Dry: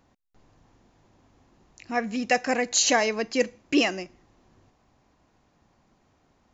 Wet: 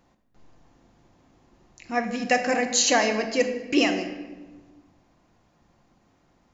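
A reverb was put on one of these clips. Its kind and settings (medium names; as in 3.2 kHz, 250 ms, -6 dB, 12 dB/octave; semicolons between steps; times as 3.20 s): simulated room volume 890 m³, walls mixed, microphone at 0.85 m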